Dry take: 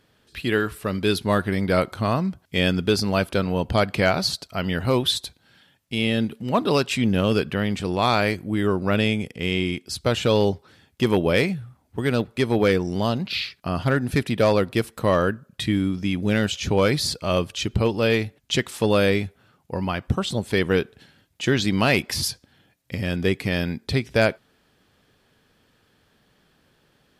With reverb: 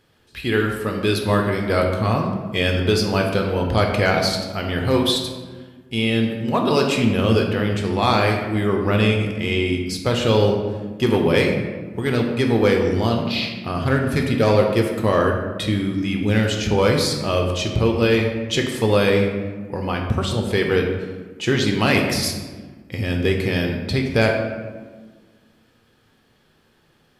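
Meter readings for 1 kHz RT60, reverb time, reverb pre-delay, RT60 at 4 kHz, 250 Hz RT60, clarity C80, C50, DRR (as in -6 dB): 1.3 s, 1.4 s, 5 ms, 0.80 s, 2.1 s, 6.0 dB, 4.5 dB, 1.5 dB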